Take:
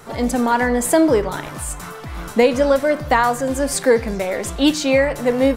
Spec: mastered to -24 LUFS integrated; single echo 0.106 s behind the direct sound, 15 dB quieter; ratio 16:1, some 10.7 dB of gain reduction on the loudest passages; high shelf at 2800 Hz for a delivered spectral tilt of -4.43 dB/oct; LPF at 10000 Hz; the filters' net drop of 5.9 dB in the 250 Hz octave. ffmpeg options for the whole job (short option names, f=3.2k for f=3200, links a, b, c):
-af "lowpass=10k,equalizer=f=250:t=o:g=-7,highshelf=f=2.8k:g=-6.5,acompressor=threshold=-22dB:ratio=16,aecho=1:1:106:0.178,volume=3.5dB"